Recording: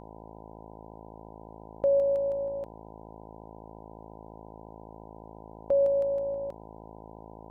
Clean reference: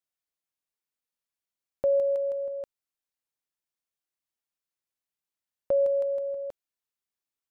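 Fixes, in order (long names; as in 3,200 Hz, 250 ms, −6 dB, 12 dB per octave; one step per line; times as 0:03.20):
hum removal 54.4 Hz, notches 17
notch filter 1,000 Hz, Q 30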